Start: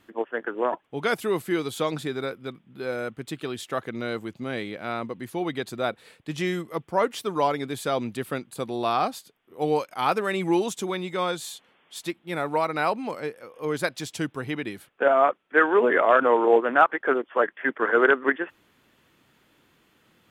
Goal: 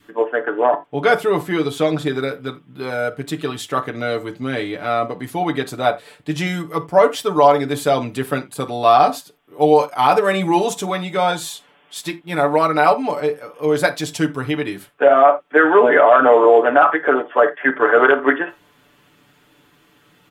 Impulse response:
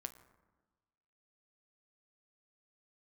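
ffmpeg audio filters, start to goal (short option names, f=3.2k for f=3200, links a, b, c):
-filter_complex "[0:a]asettb=1/sr,asplit=3[a][b][c];[a]atrim=end=0.414[d];[b]atrim=start=0.41:end=2.06,asetpts=PTS-STARTPTS,afade=t=in:d=0.004:c=qsin,afade=t=out:st=1.646:d=0.004:c=qsin,highshelf=f=5.6k:g=-7.5[e];[c]atrim=start=2.056[f];[d][e]acrossfade=d=0.004:c1=hsin:c2=qsin[g];[g][f]acrossfade=d=0.004:c1=qsin:c2=hsin,aecho=1:1:6.9:0.74,adynamicequalizer=threshold=0.0224:dfrequency=680:dqfactor=2.1:tfrequency=680:tqfactor=2.1:attack=5:release=100:ratio=0.375:range=3:mode=boostabove:tftype=bell[h];[1:a]atrim=start_sample=2205,atrim=end_sample=3969[i];[h][i]afir=irnorm=-1:irlink=0,alimiter=level_in=10.5dB:limit=-1dB:release=50:level=0:latency=1,volume=-1dB"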